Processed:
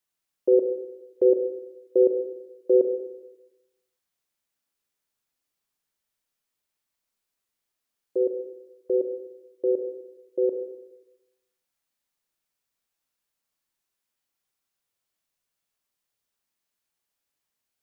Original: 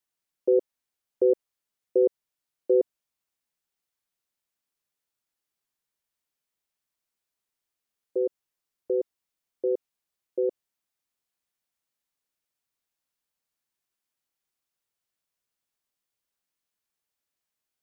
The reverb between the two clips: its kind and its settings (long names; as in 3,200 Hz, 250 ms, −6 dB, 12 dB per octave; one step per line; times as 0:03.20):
four-comb reverb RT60 1 s, combs from 28 ms, DRR 4.5 dB
level +1.5 dB